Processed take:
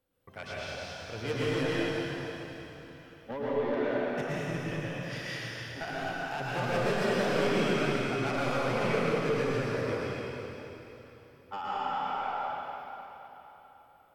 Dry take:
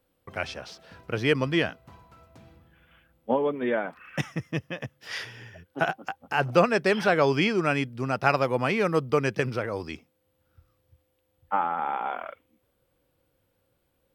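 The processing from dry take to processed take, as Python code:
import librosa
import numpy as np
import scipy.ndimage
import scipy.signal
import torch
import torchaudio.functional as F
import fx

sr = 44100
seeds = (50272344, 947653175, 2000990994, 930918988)

y = 10.0 ** (-23.0 / 20.0) * np.tanh(x / 10.0 ** (-23.0 / 20.0))
y = fx.rev_plate(y, sr, seeds[0], rt60_s=3.6, hf_ratio=0.95, predelay_ms=95, drr_db=-8.5)
y = y * librosa.db_to_amplitude(-9.0)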